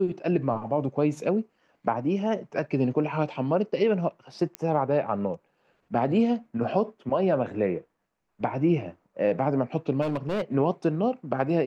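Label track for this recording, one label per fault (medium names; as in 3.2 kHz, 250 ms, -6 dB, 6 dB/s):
4.550000	4.550000	pop -16 dBFS
10.010000	10.420000	clipped -23.5 dBFS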